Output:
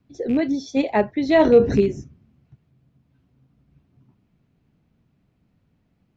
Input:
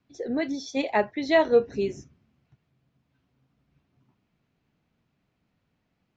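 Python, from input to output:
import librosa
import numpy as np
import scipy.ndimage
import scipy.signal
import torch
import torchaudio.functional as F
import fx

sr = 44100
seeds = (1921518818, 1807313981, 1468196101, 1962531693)

y = fx.rattle_buzz(x, sr, strikes_db=-32.0, level_db=-30.0)
y = fx.low_shelf(y, sr, hz=430.0, db=11.5)
y = fx.env_flatten(y, sr, amount_pct=50, at=(1.39, 1.8), fade=0.02)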